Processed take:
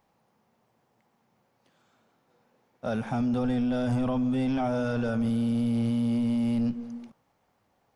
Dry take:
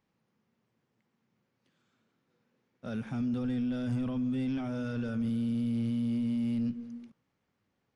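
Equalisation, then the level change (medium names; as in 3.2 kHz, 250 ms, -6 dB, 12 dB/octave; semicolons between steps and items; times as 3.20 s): bass shelf 74 Hz +9.5 dB; peaking EQ 760 Hz +14.5 dB 1.4 oct; treble shelf 3.9 kHz +8.5 dB; +1.5 dB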